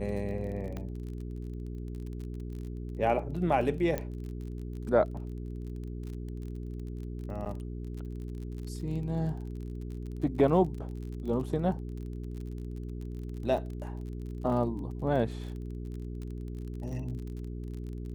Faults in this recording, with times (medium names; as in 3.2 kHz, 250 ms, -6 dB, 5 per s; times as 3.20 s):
crackle 32 per s -39 dBFS
hum 60 Hz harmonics 7 -38 dBFS
0.77 s: pop -25 dBFS
3.98 s: pop -18 dBFS
7.45–7.46 s: dropout 8.8 ms